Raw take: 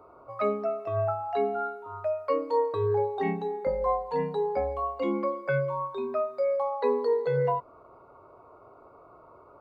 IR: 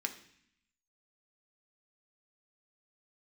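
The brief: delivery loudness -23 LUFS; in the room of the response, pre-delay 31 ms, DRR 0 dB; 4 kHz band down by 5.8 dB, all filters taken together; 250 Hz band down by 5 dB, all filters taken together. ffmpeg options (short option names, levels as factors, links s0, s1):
-filter_complex "[0:a]equalizer=f=250:t=o:g=-7.5,equalizer=f=4000:t=o:g=-7,asplit=2[s0][s1];[1:a]atrim=start_sample=2205,adelay=31[s2];[s1][s2]afir=irnorm=-1:irlink=0,volume=0.841[s3];[s0][s3]amix=inputs=2:normalize=0,volume=1.78"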